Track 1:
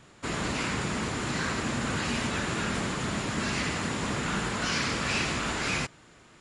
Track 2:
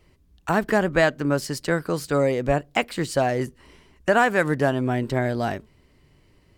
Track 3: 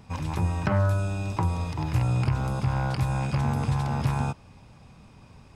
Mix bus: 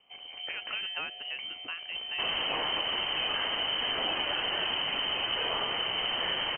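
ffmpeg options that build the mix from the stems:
-filter_complex "[0:a]lowshelf=f=210:g=7,adelay=1950,volume=0.794[s0];[1:a]highpass=370,equalizer=f=1300:w=0.47:g=-4,acompressor=threshold=0.0631:ratio=6,volume=0.316[s1];[2:a]volume=0.158[s2];[s0][s1][s2]amix=inputs=3:normalize=0,aexciter=amount=2.2:drive=9.3:freq=2400,lowpass=f=2700:t=q:w=0.5098,lowpass=f=2700:t=q:w=0.6013,lowpass=f=2700:t=q:w=0.9,lowpass=f=2700:t=q:w=2.563,afreqshift=-3200,acompressor=threshold=0.0447:ratio=6"

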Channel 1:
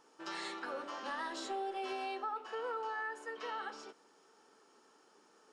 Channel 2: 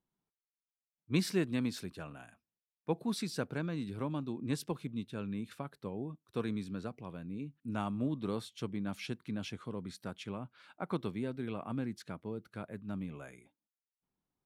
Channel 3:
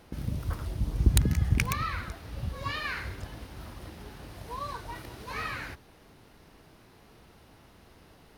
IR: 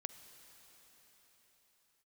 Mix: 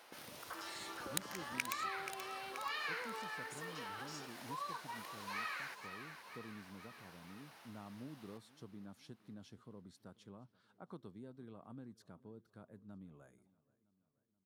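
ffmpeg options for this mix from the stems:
-filter_complex "[0:a]aemphasis=mode=production:type=bsi,alimiter=level_in=4.22:limit=0.0631:level=0:latency=1,volume=0.237,adelay=350,volume=1.26[s0];[1:a]equalizer=f=2400:t=o:w=0.66:g=-13,volume=0.237,asplit=2[s1][s2];[s2]volume=0.0631[s3];[2:a]highpass=730,volume=1.06,asplit=2[s4][s5];[s5]volume=0.237[s6];[s3][s6]amix=inputs=2:normalize=0,aecho=0:1:480|960|1440|1920|2400|2880|3360|3840:1|0.55|0.303|0.166|0.0915|0.0503|0.0277|0.0152[s7];[s0][s1][s4][s7]amix=inputs=4:normalize=0,acompressor=threshold=0.00282:ratio=1.5"

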